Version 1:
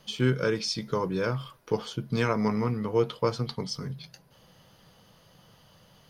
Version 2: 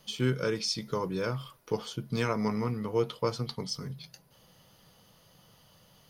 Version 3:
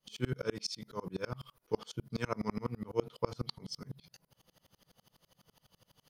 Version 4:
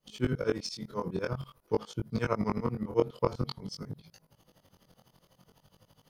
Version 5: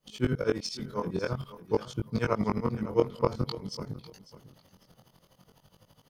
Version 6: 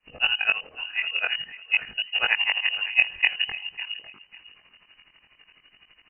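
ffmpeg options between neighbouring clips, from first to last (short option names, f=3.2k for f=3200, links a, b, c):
-af "highshelf=f=6.5k:g=8,bandreject=f=1.6k:w=21,volume=-3.5dB"
-af "aeval=exprs='val(0)*pow(10,-31*if(lt(mod(-12*n/s,1),2*abs(-12)/1000),1-mod(-12*n/s,1)/(2*abs(-12)/1000),(mod(-12*n/s,1)-2*abs(-12)/1000)/(1-2*abs(-12)/1000))/20)':c=same,volume=1dB"
-filter_complex "[0:a]asplit=2[a][b];[b]adynamicsmooth=sensitivity=2.5:basefreq=1.9k,volume=-1.5dB[c];[a][c]amix=inputs=2:normalize=0,flanger=delay=18.5:depth=5:speed=0.49,volume=4dB"
-af "aecho=1:1:549|1098:0.158|0.038,volume=2dB"
-af "crystalizer=i=5.5:c=0,lowpass=f=2.6k:t=q:w=0.5098,lowpass=f=2.6k:t=q:w=0.6013,lowpass=f=2.6k:t=q:w=0.9,lowpass=f=2.6k:t=q:w=2.563,afreqshift=-3000,volume=3.5dB"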